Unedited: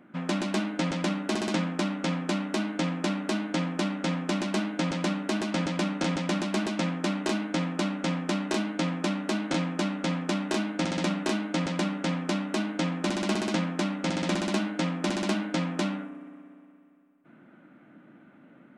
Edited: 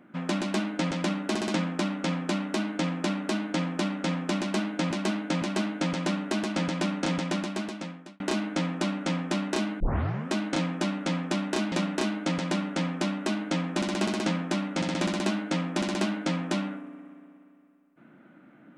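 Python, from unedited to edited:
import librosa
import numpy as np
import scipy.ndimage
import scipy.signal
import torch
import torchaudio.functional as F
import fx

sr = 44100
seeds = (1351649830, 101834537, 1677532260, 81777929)

y = fx.edit(x, sr, fx.repeat(start_s=4.4, length_s=0.51, count=3),
    fx.fade_out_span(start_s=6.2, length_s=0.98),
    fx.tape_start(start_s=8.78, length_s=0.53),
    fx.cut(start_s=10.7, length_s=0.3), tone=tone)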